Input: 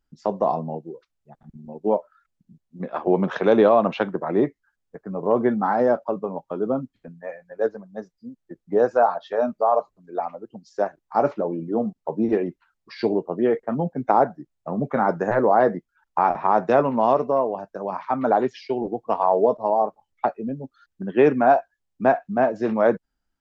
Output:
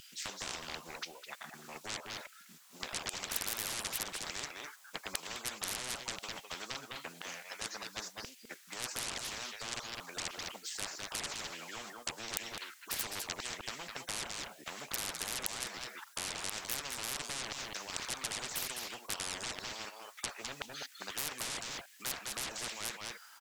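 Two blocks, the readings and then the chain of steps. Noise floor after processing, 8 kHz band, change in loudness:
−58 dBFS, can't be measured, −17.0 dB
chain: high-shelf EQ 2,900 Hz +10.5 dB
in parallel at +1 dB: downward compressor, threshold −27 dBFS, peak gain reduction 15.5 dB
on the sum: auto-filter high-pass saw down 0.97 Hz 590–2,900 Hz
brickwall limiter −7 dBFS, peak gain reduction 9 dB
sine wavefolder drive 14 dB, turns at −7 dBFS
on a send: single-tap delay 207 ms −18.5 dB
on the sum: every bin compressed towards the loudest bin 10 to 1
level −3 dB

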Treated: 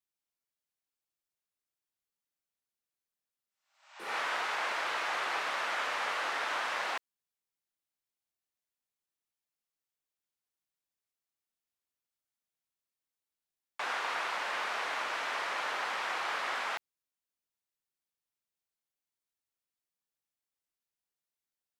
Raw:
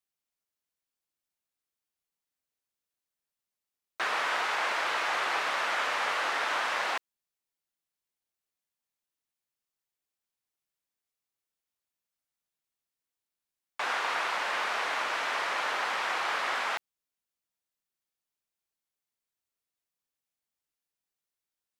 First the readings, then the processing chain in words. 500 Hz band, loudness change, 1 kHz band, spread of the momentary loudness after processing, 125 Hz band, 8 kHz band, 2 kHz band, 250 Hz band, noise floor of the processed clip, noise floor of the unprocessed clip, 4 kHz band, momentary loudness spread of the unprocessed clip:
−4.0 dB, −4.0 dB, −4.0 dB, 5 LU, can't be measured, −4.0 dB, −4.0 dB, −4.0 dB, below −85 dBFS, below −85 dBFS, −4.0 dB, 4 LU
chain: healed spectral selection 0:03.50–0:04.11, 560–8,300 Hz both
level −4 dB

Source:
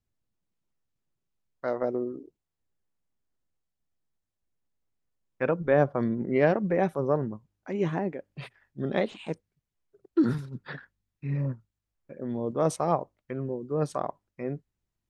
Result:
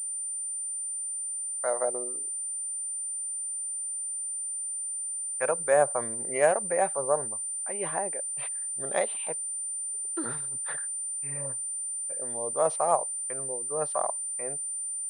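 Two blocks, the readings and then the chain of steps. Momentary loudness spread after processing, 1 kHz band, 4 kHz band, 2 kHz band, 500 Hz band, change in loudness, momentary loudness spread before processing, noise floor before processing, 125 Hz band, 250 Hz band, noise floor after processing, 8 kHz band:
6 LU, +2.5 dB, −2.5 dB, +0.5 dB, −0.5 dB, +0.5 dB, 17 LU, −85 dBFS, −15.5 dB, −14.5 dB, −34 dBFS, can't be measured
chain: low shelf with overshoot 410 Hz −14 dB, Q 1.5
switching amplifier with a slow clock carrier 9,100 Hz

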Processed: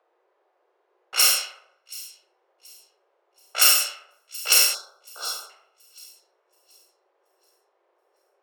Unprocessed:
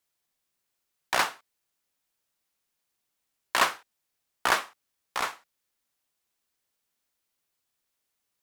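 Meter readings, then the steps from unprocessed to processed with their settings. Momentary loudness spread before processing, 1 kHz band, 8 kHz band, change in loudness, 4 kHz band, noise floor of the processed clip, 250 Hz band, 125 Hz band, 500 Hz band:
11 LU, −5.5 dB, +17.0 dB, +9.0 dB, +12.5 dB, −71 dBFS, below −10 dB, below −30 dB, −3.0 dB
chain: samples in bit-reversed order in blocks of 128 samples
four-comb reverb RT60 0.83 s, combs from 31 ms, DRR −4 dB
gain on a spectral selection 0:04.74–0:05.50, 1,600–3,300 Hz −26 dB
Butterworth high-pass 350 Hz 96 dB per octave
in parallel at −2 dB: upward compression, threshold −30 dBFS
on the sum: low-pass that shuts in the quiet parts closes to 640 Hz, open at −12.5 dBFS
on a send: delay with a high-pass on its return 728 ms, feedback 30%, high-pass 3,500 Hz, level −19 dB

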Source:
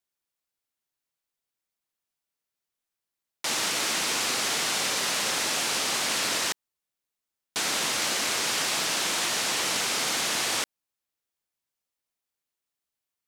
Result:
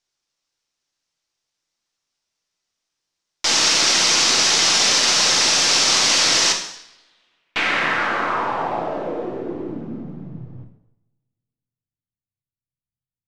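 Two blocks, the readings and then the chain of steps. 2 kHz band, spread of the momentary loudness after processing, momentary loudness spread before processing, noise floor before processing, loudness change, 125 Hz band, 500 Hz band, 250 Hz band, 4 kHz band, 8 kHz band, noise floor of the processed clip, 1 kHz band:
+7.0 dB, 16 LU, 4 LU, below −85 dBFS, +10.0 dB, +10.5 dB, +8.5 dB, +9.0 dB, +9.5 dB, +8.0 dB, below −85 dBFS, +8.5 dB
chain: gain on one half-wave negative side −3 dB
coupled-rooms reverb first 0.75 s, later 2.4 s, from −28 dB, DRR 2.5 dB
low-pass filter sweep 5,700 Hz → 130 Hz, 0:06.74–0:10.55
level +7 dB

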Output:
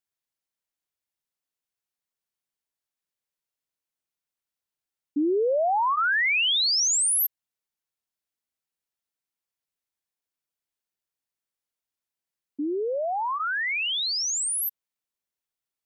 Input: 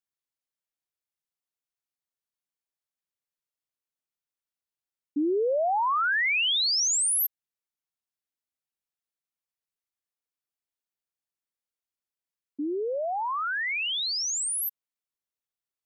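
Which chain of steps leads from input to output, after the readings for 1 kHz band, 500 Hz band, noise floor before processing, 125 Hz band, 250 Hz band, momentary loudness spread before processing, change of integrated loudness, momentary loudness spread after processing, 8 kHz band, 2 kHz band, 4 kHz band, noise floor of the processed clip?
+1.5 dB, +2.0 dB, below −85 dBFS, can't be measured, +2.0 dB, 9 LU, +2.0 dB, 9 LU, +2.0 dB, +2.0 dB, +2.0 dB, below −85 dBFS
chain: notch filter 1,200 Hz, Q 29
level +2 dB

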